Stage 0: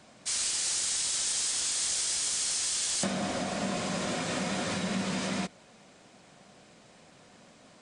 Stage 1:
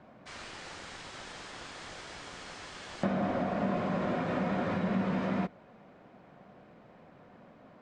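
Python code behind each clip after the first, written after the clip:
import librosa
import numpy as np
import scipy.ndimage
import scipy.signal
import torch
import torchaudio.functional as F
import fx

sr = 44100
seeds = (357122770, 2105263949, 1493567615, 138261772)

y = scipy.signal.sosfilt(scipy.signal.butter(2, 1500.0, 'lowpass', fs=sr, output='sos'), x)
y = y * 10.0 ** (2.0 / 20.0)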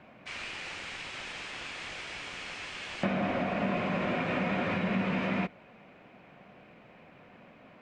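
y = fx.peak_eq(x, sr, hz=2500.0, db=12.0, octaves=0.76)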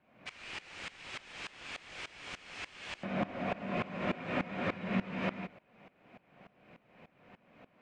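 y = fx.tremolo_decay(x, sr, direction='swelling', hz=3.4, depth_db=20)
y = y * 10.0 ** (1.0 / 20.0)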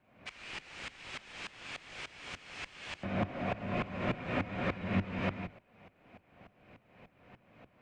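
y = fx.octave_divider(x, sr, octaves=1, level_db=-3.0)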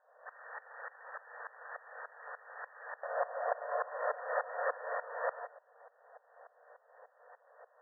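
y = fx.brickwall_bandpass(x, sr, low_hz=440.0, high_hz=1900.0)
y = y * 10.0 ** (3.5 / 20.0)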